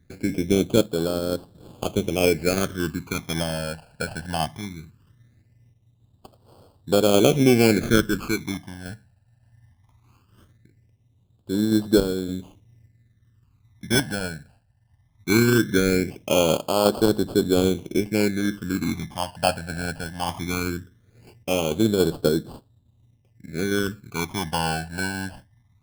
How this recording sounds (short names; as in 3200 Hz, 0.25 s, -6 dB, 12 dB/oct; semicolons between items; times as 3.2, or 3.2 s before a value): aliases and images of a low sample rate 1900 Hz, jitter 0%; phasing stages 12, 0.19 Hz, lowest notch 360–2200 Hz; random-step tremolo